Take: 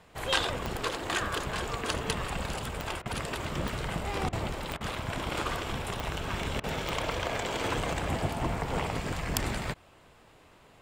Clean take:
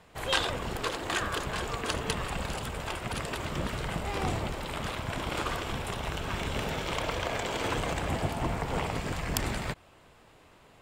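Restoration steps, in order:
click removal
repair the gap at 0:03.02/0:04.29/0:04.77/0:06.60, 36 ms

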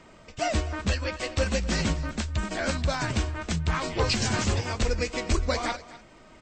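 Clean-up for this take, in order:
repair the gap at 0:02.09/0:02.94/0:04.16/0:04.64, 1 ms
echo removal 250 ms −17.5 dB

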